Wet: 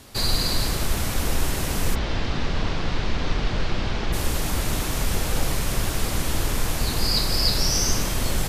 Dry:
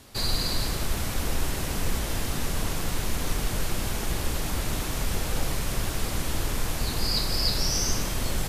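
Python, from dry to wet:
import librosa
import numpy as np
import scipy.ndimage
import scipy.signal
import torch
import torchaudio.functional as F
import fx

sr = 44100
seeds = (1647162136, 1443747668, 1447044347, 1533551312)

y = fx.lowpass(x, sr, hz=4700.0, slope=24, at=(1.94, 4.12), fade=0.02)
y = y * librosa.db_to_amplitude(4.0)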